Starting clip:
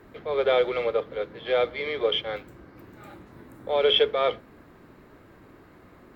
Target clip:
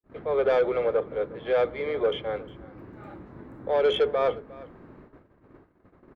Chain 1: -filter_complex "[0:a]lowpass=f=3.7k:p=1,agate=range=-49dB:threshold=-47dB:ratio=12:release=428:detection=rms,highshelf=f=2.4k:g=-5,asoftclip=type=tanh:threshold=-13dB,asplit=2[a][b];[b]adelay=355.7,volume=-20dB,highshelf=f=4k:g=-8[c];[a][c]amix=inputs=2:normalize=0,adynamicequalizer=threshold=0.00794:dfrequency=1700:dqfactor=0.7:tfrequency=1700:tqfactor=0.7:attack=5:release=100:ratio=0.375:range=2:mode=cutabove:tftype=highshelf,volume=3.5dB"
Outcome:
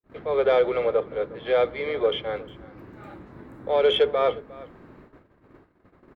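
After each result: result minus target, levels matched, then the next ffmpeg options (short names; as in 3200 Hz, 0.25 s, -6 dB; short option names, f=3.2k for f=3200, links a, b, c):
soft clip: distortion -9 dB; 4000 Hz band +3.5 dB
-filter_complex "[0:a]lowpass=f=3.7k:p=1,agate=range=-49dB:threshold=-47dB:ratio=12:release=428:detection=rms,highshelf=f=2.4k:g=-5,asoftclip=type=tanh:threshold=-19.5dB,asplit=2[a][b];[b]adelay=355.7,volume=-20dB,highshelf=f=4k:g=-8[c];[a][c]amix=inputs=2:normalize=0,adynamicequalizer=threshold=0.00794:dfrequency=1700:dqfactor=0.7:tfrequency=1700:tqfactor=0.7:attack=5:release=100:ratio=0.375:range=2:mode=cutabove:tftype=highshelf,volume=3.5dB"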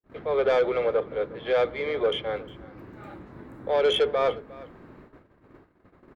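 4000 Hz band +4.0 dB
-filter_complex "[0:a]lowpass=f=3.7k:p=1,agate=range=-49dB:threshold=-47dB:ratio=12:release=428:detection=rms,highshelf=f=2.4k:g=-13.5,asoftclip=type=tanh:threshold=-19.5dB,asplit=2[a][b];[b]adelay=355.7,volume=-20dB,highshelf=f=4k:g=-8[c];[a][c]amix=inputs=2:normalize=0,adynamicequalizer=threshold=0.00794:dfrequency=1700:dqfactor=0.7:tfrequency=1700:tqfactor=0.7:attack=5:release=100:ratio=0.375:range=2:mode=cutabove:tftype=highshelf,volume=3.5dB"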